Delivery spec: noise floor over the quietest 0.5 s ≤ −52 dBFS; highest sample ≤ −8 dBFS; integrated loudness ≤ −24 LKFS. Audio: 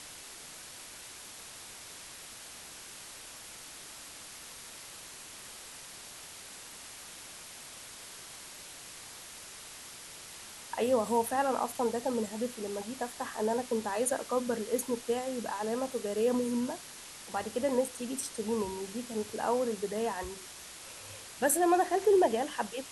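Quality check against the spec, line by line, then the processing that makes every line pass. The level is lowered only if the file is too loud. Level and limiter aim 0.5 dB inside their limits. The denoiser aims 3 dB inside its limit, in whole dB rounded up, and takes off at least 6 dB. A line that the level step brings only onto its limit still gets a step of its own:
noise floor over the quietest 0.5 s −48 dBFS: out of spec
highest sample −15.5 dBFS: in spec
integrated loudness −32.0 LKFS: in spec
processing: broadband denoise 7 dB, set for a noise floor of −48 dBFS

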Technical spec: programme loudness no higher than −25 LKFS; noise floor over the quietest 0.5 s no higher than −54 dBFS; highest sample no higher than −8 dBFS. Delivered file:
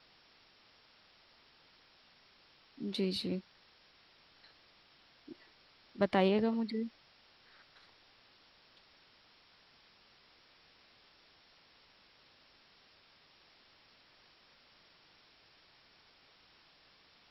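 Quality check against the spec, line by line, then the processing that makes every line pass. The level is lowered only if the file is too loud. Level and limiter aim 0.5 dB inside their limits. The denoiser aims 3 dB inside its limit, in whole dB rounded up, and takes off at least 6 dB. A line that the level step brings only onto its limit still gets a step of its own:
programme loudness −34.0 LKFS: in spec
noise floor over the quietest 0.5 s −65 dBFS: in spec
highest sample −18.0 dBFS: in spec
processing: no processing needed

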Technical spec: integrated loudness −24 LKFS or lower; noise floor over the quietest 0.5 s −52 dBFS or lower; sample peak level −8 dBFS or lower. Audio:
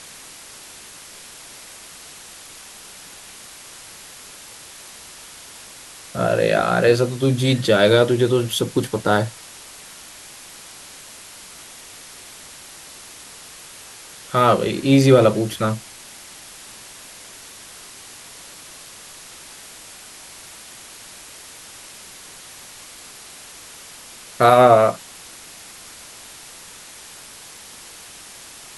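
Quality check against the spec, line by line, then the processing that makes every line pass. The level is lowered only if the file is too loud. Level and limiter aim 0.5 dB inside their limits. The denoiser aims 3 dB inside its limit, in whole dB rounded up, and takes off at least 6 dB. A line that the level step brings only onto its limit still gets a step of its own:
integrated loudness −17.0 LKFS: out of spec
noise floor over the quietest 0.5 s −41 dBFS: out of spec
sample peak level −2.0 dBFS: out of spec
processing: broadband denoise 7 dB, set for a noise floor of −41 dBFS
level −7.5 dB

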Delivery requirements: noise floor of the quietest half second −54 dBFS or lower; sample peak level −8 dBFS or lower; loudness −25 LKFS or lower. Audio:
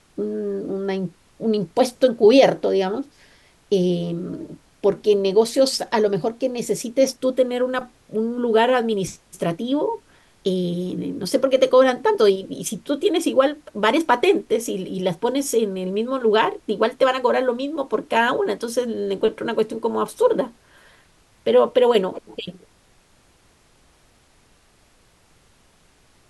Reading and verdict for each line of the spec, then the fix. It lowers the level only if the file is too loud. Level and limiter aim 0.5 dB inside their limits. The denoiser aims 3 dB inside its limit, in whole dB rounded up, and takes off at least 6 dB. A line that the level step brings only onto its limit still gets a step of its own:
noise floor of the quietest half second −57 dBFS: in spec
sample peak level −3.0 dBFS: out of spec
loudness −21.0 LKFS: out of spec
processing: level −4.5 dB
brickwall limiter −8.5 dBFS

